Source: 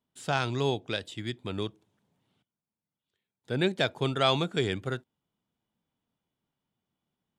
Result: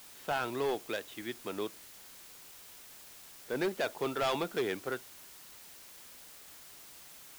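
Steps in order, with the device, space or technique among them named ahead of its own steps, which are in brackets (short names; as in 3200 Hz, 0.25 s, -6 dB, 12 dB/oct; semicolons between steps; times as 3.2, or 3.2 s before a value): aircraft radio (BPF 330–2400 Hz; hard clip -26.5 dBFS, distortion -8 dB; white noise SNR 14 dB)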